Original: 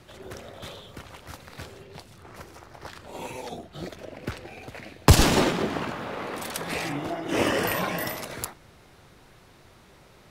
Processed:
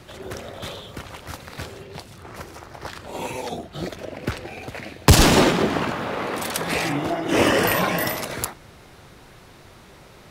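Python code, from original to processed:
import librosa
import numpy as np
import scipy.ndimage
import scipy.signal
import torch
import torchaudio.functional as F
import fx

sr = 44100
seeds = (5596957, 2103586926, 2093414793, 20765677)

y = fx.cheby_harmonics(x, sr, harmonics=(5,), levels_db=(-17,), full_scale_db=-4.0)
y = F.gain(torch.from_numpy(y), 2.0).numpy()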